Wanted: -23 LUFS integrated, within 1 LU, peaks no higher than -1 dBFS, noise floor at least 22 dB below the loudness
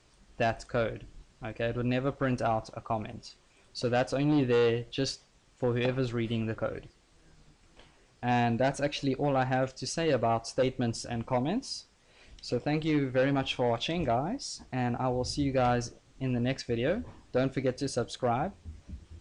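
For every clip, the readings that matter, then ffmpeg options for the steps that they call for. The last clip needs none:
loudness -30.5 LUFS; peak -20.5 dBFS; loudness target -23.0 LUFS
-> -af "volume=7.5dB"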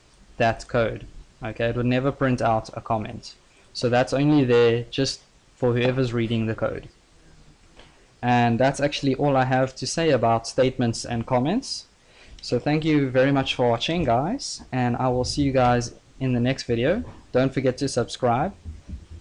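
loudness -23.0 LUFS; peak -13.0 dBFS; noise floor -56 dBFS

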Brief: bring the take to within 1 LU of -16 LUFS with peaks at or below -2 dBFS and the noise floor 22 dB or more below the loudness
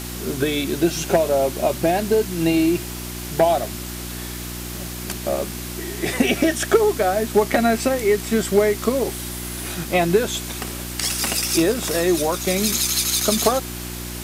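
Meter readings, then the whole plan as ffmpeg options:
hum 60 Hz; harmonics up to 360 Hz; hum level -31 dBFS; noise floor -31 dBFS; noise floor target -43 dBFS; loudness -21.0 LUFS; peak -4.0 dBFS; loudness target -16.0 LUFS
-> -af "bandreject=f=60:t=h:w=4,bandreject=f=120:t=h:w=4,bandreject=f=180:t=h:w=4,bandreject=f=240:t=h:w=4,bandreject=f=300:t=h:w=4,bandreject=f=360:t=h:w=4"
-af "afftdn=nr=12:nf=-31"
-af "volume=5dB,alimiter=limit=-2dB:level=0:latency=1"

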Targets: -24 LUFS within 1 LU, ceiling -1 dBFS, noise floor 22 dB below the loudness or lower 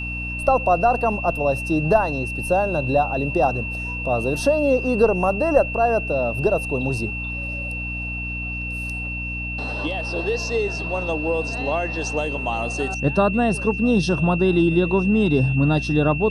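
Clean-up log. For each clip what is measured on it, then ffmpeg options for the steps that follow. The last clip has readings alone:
hum 60 Hz; harmonics up to 300 Hz; hum level -29 dBFS; steady tone 2700 Hz; tone level -28 dBFS; loudness -21.5 LUFS; peak -3.0 dBFS; loudness target -24.0 LUFS
-> -af "bandreject=f=60:t=h:w=4,bandreject=f=120:t=h:w=4,bandreject=f=180:t=h:w=4,bandreject=f=240:t=h:w=4,bandreject=f=300:t=h:w=4"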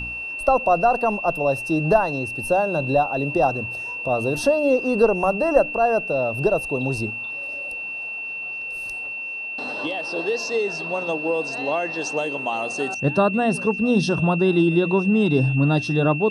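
hum none; steady tone 2700 Hz; tone level -28 dBFS
-> -af "bandreject=f=2.7k:w=30"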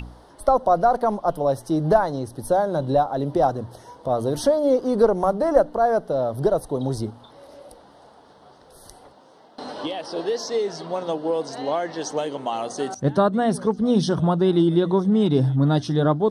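steady tone none; loudness -22.0 LUFS; peak -3.5 dBFS; loudness target -24.0 LUFS
-> -af "volume=-2dB"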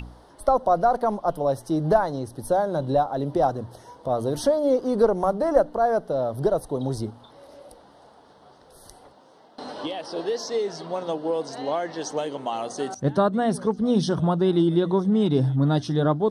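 loudness -24.0 LUFS; peak -5.5 dBFS; noise floor -53 dBFS

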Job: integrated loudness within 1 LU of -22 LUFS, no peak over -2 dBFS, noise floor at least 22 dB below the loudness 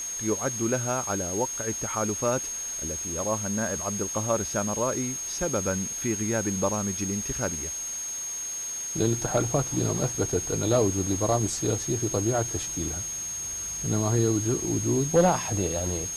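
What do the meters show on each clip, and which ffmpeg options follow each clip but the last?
steady tone 6500 Hz; tone level -31 dBFS; noise floor -34 dBFS; noise floor target -49 dBFS; loudness -27.0 LUFS; peak -10.0 dBFS; loudness target -22.0 LUFS
-> -af "bandreject=f=6.5k:w=30"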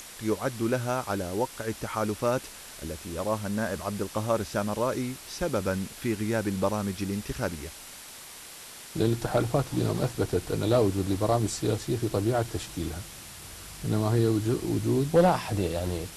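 steady tone none; noise floor -45 dBFS; noise floor target -51 dBFS
-> -af "afftdn=nr=6:nf=-45"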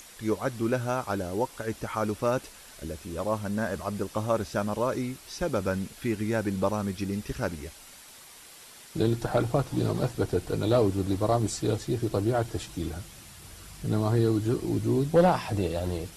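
noise floor -50 dBFS; noise floor target -51 dBFS
-> -af "afftdn=nr=6:nf=-50"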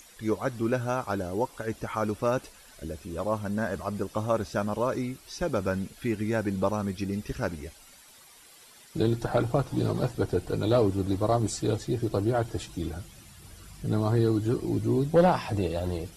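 noise floor -53 dBFS; loudness -28.5 LUFS; peak -11.0 dBFS; loudness target -22.0 LUFS
-> -af "volume=6.5dB"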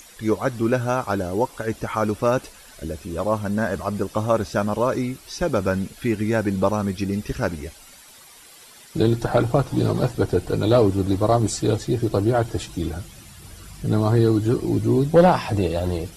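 loudness -22.0 LUFS; peak -4.5 dBFS; noise floor -47 dBFS

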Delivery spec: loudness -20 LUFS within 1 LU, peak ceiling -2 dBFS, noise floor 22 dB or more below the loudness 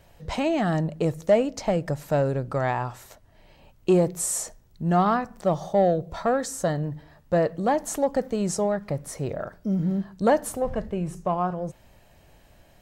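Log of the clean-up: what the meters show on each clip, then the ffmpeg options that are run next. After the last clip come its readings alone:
loudness -25.5 LUFS; peak -9.5 dBFS; loudness target -20.0 LUFS
-> -af "volume=5.5dB"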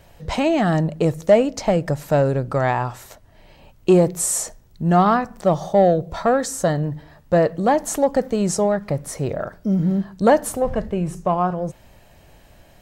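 loudness -20.0 LUFS; peak -4.0 dBFS; noise floor -51 dBFS

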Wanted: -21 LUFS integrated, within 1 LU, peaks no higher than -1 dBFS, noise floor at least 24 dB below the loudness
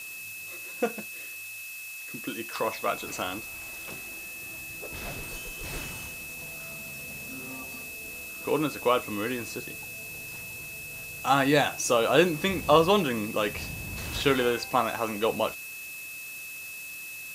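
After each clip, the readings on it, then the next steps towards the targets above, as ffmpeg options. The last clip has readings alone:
steady tone 2600 Hz; tone level -39 dBFS; noise floor -40 dBFS; noise floor target -54 dBFS; loudness -29.5 LUFS; peak -5.0 dBFS; loudness target -21.0 LUFS
-> -af "bandreject=f=2.6k:w=30"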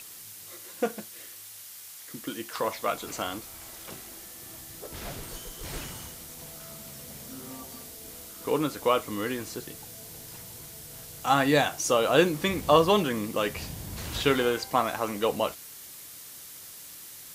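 steady tone none; noise floor -45 dBFS; noise floor target -52 dBFS
-> -af "afftdn=nr=7:nf=-45"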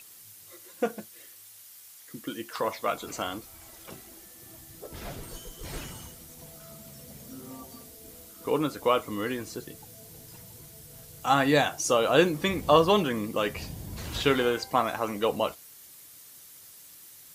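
noise floor -51 dBFS; noise floor target -52 dBFS
-> -af "afftdn=nr=6:nf=-51"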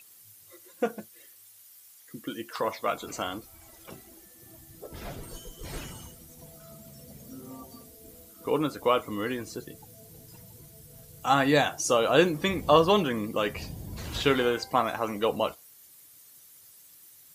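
noise floor -54 dBFS; loudness -27.0 LUFS; peak -5.0 dBFS; loudness target -21.0 LUFS
-> -af "volume=6dB,alimiter=limit=-1dB:level=0:latency=1"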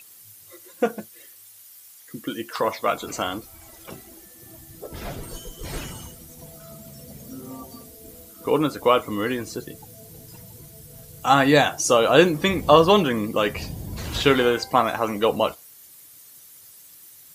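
loudness -21.5 LUFS; peak -1.0 dBFS; noise floor -48 dBFS

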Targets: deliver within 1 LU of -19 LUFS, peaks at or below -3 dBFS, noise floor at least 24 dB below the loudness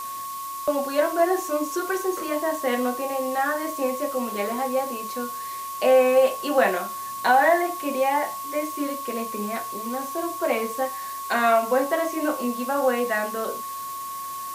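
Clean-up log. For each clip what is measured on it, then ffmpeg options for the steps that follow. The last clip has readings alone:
steady tone 1100 Hz; tone level -31 dBFS; noise floor -33 dBFS; noise floor target -49 dBFS; loudness -24.5 LUFS; peak -7.5 dBFS; loudness target -19.0 LUFS
-> -af "bandreject=f=1.1k:w=30"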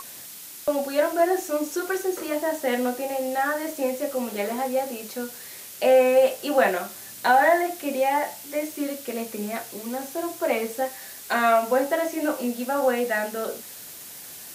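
steady tone none; noise floor -41 dBFS; noise floor target -49 dBFS
-> -af "afftdn=nr=8:nf=-41"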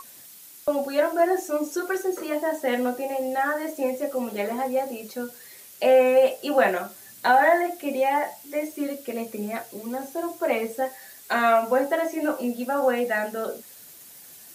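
noise floor -47 dBFS; noise floor target -49 dBFS
-> -af "afftdn=nr=6:nf=-47"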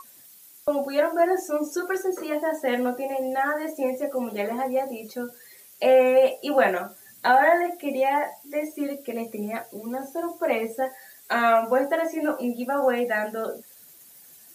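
noise floor -51 dBFS; loudness -24.5 LUFS; peak -7.5 dBFS; loudness target -19.0 LUFS
-> -af "volume=5.5dB,alimiter=limit=-3dB:level=0:latency=1"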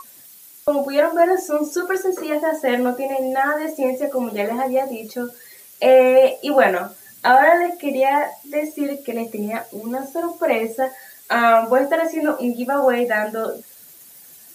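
loudness -19.0 LUFS; peak -3.0 dBFS; noise floor -45 dBFS

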